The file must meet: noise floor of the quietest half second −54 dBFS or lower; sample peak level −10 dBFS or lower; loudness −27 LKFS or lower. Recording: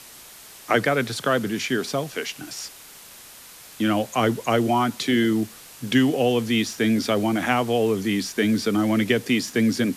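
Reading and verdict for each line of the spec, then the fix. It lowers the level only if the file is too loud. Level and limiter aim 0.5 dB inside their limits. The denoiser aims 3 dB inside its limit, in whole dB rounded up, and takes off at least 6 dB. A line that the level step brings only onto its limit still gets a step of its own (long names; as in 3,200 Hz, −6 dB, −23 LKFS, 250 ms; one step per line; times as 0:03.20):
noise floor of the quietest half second −45 dBFS: out of spec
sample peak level −5.5 dBFS: out of spec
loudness −22.5 LKFS: out of spec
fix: broadband denoise 7 dB, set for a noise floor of −45 dBFS
level −5 dB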